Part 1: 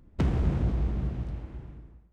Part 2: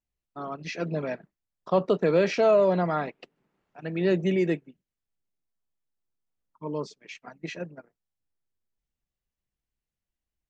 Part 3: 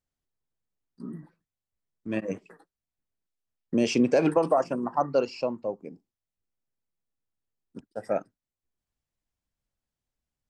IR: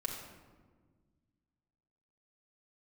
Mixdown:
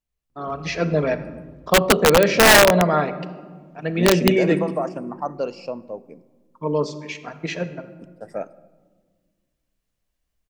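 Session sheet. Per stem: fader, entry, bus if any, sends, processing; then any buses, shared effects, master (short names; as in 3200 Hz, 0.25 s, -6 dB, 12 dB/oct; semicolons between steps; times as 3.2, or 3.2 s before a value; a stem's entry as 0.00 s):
-10.0 dB, 0.30 s, no send, compressor, threshold -30 dBFS, peak gain reduction 10 dB; auto duck -11 dB, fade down 0.25 s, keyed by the second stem
-1.0 dB, 0.00 s, send -6.5 dB, dry
-10.5 dB, 0.25 s, send -15 dB, de-esser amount 55%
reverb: on, RT60 1.5 s, pre-delay 4 ms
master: AGC gain up to 7.5 dB; wrapped overs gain 6 dB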